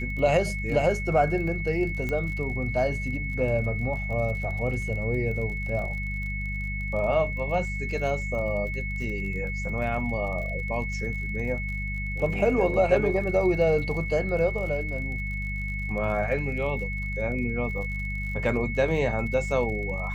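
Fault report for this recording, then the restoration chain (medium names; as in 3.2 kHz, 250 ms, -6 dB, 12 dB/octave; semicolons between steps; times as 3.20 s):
crackle 45 per s -36 dBFS
hum 50 Hz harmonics 4 -32 dBFS
whine 2.2 kHz -33 dBFS
2.09 s: pop -18 dBFS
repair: de-click; band-stop 2.2 kHz, Q 30; de-hum 50 Hz, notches 4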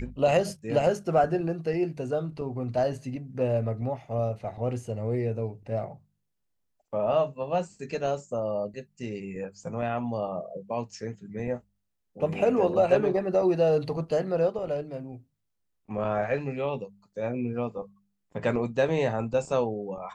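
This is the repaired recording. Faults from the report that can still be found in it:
nothing left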